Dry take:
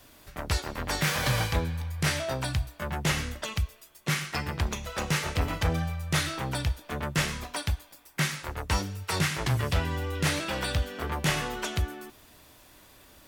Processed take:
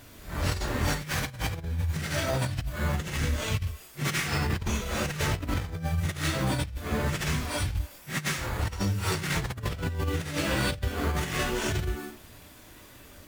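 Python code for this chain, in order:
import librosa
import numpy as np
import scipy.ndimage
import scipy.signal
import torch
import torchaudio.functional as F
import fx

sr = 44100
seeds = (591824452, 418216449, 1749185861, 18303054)

p1 = fx.phase_scramble(x, sr, seeds[0], window_ms=200)
p2 = fx.sample_hold(p1, sr, seeds[1], rate_hz=5600.0, jitter_pct=0)
p3 = p1 + (p2 * librosa.db_to_amplitude(-5.5))
p4 = fx.peak_eq(p3, sr, hz=850.0, db=-4.5, octaves=1.5)
p5 = fx.over_compress(p4, sr, threshold_db=-29.0, ratio=-0.5)
y = fx.peak_eq(p5, sr, hz=93.0, db=3.0, octaves=0.77)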